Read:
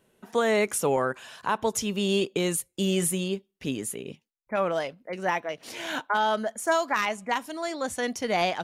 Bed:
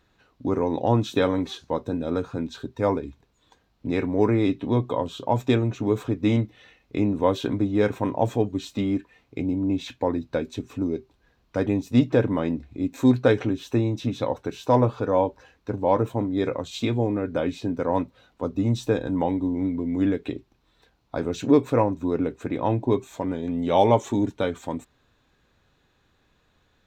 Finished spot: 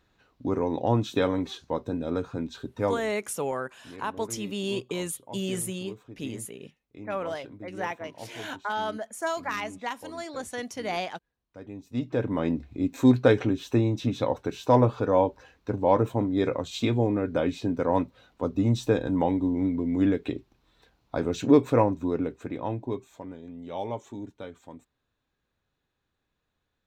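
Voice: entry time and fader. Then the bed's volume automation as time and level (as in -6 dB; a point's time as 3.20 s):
2.55 s, -5.5 dB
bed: 2.84 s -3 dB
3.23 s -20 dB
11.60 s -20 dB
12.48 s -0.5 dB
21.85 s -0.5 dB
23.54 s -15 dB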